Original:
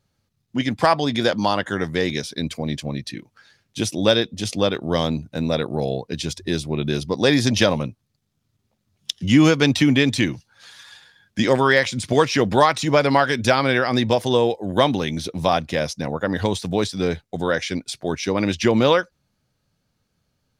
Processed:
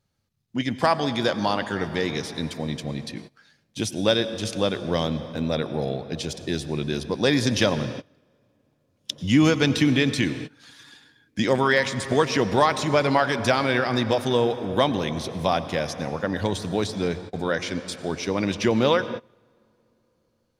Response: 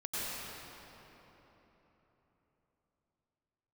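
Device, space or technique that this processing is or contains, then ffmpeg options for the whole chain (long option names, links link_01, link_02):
keyed gated reverb: -filter_complex "[0:a]asplit=3[link_01][link_02][link_03];[1:a]atrim=start_sample=2205[link_04];[link_02][link_04]afir=irnorm=-1:irlink=0[link_05];[link_03]apad=whole_len=908025[link_06];[link_05][link_06]sidechaingate=range=-24dB:threshold=-40dB:ratio=16:detection=peak,volume=-15dB[link_07];[link_01][link_07]amix=inputs=2:normalize=0,volume=-4.5dB"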